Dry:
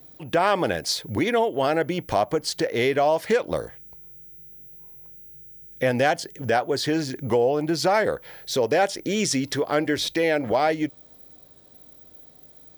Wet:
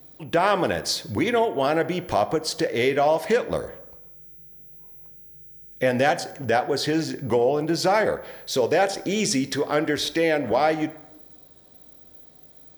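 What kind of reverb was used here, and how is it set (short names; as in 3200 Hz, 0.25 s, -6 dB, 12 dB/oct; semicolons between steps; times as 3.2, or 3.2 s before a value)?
plate-style reverb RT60 0.95 s, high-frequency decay 0.5×, DRR 11.5 dB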